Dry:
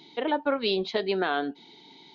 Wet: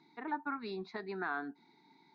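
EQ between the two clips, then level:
high-frequency loss of the air 160 metres
low-shelf EQ 120 Hz −11.5 dB
phaser with its sweep stopped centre 1,300 Hz, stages 4
−5.0 dB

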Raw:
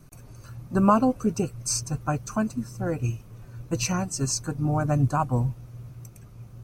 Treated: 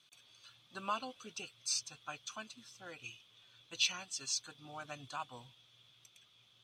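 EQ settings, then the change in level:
resonant band-pass 3,400 Hz, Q 16
+18.0 dB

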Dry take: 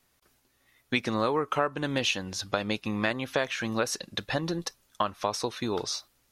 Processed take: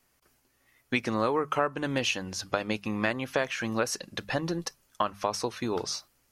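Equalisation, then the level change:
parametric band 3,700 Hz −7.5 dB 0.25 octaves
mains-hum notches 50/100/150/200 Hz
0.0 dB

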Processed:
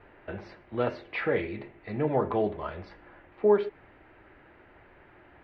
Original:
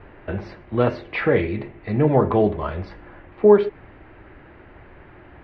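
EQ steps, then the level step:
low-shelf EQ 260 Hz −8.5 dB
notch filter 1,100 Hz, Q 22
−6.5 dB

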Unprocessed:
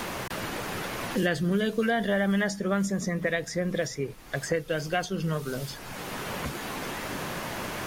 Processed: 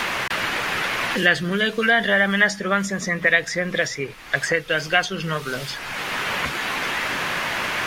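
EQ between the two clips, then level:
parametric band 2,200 Hz +14.5 dB 2.8 octaves
0.0 dB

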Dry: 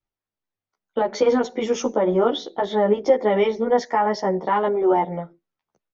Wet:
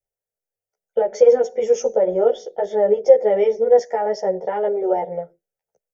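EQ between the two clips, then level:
parametric band 470 Hz +14 dB 0.99 octaves
high shelf with overshoot 3,400 Hz +8.5 dB, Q 1.5
phaser with its sweep stopped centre 1,100 Hz, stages 6
−5.0 dB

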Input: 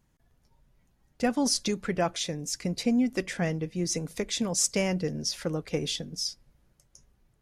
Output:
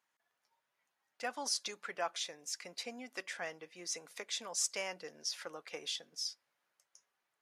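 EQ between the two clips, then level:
high-shelf EQ 3,500 Hz −10 dB
dynamic equaliser 2,100 Hz, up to −4 dB, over −47 dBFS, Q 1.3
high-pass filter 1,100 Hz 12 dB per octave
0.0 dB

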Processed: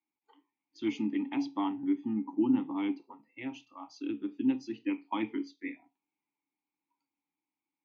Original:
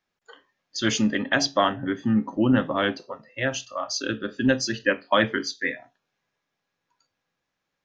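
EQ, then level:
formant filter u
+1.5 dB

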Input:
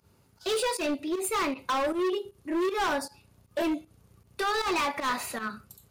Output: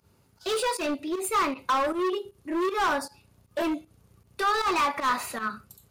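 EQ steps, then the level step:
dynamic equaliser 1,200 Hz, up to +6 dB, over −42 dBFS, Q 2.1
0.0 dB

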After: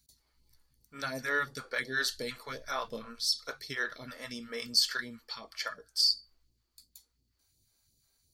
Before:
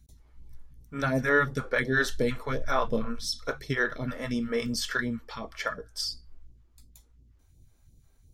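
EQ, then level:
spectral tilt +3 dB per octave
parametric band 4,500 Hz +14.5 dB 0.2 octaves
−8.0 dB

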